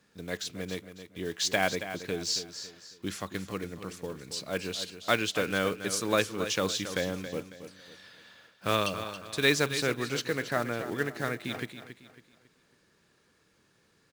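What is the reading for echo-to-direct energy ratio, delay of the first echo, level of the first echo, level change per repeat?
-10.5 dB, 275 ms, -11.0 dB, -9.0 dB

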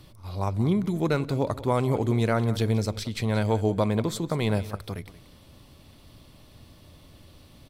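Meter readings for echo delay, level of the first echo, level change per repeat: 180 ms, -16.0 dB, -16.0 dB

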